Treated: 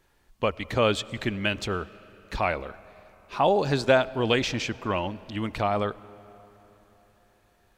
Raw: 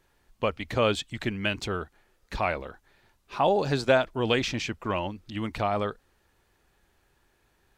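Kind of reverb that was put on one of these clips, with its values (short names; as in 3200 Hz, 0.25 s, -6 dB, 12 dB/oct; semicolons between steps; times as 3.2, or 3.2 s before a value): digital reverb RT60 4 s, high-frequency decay 0.6×, pre-delay 50 ms, DRR 19.5 dB; gain +1.5 dB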